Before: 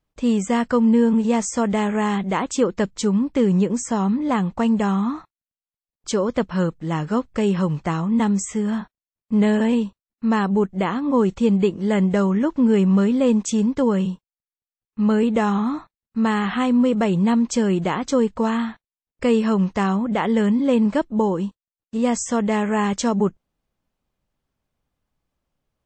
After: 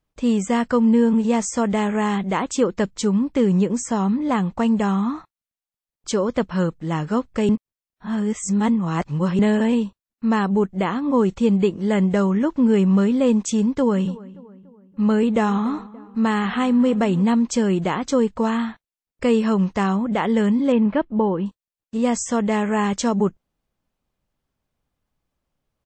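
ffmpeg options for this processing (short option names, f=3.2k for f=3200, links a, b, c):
-filter_complex "[0:a]asplit=3[a][b][c];[a]afade=t=out:st=13.89:d=0.02[d];[b]asplit=2[e][f];[f]adelay=288,lowpass=f=1.9k:p=1,volume=-19dB,asplit=2[g][h];[h]adelay=288,lowpass=f=1.9k:p=1,volume=0.49,asplit=2[i][j];[j]adelay=288,lowpass=f=1.9k:p=1,volume=0.49,asplit=2[k][l];[l]adelay=288,lowpass=f=1.9k:p=1,volume=0.49[m];[e][g][i][k][m]amix=inputs=5:normalize=0,afade=t=in:st=13.89:d=0.02,afade=t=out:st=17.23:d=0.02[n];[c]afade=t=in:st=17.23:d=0.02[o];[d][n][o]amix=inputs=3:normalize=0,asettb=1/sr,asplit=3[p][q][r];[p]atrim=end=20.724[s];[q]atrim=start=20.72:end=21.46,asetpts=PTS-STARTPTS,afade=t=in:d=0.004:c=qsin,afade=t=out:st=0.736:d=0.004:c=qsin,lowpass=f=3.2k:w=0.5412,lowpass=f=3.2k:w=1.3066[t];[r]atrim=start=21.456[u];[s][t]acrossfade=d=0.004:c1=hsin:c2=qsin[v];[v][u]acrossfade=d=0.004:c1=qsin:c2=hsin,asplit=3[w][x][y];[w]atrim=end=7.492[z];[x]atrim=start=7.488:end=9.392,asetpts=PTS-STARTPTS,areverse[aa];[y]atrim=start=9.388[ab];[z][aa]acrossfade=d=0.004:c1=hsin:c2=hsin[ac];[ac][ab]acrossfade=d=0.004:c1=hsin:c2=hsin"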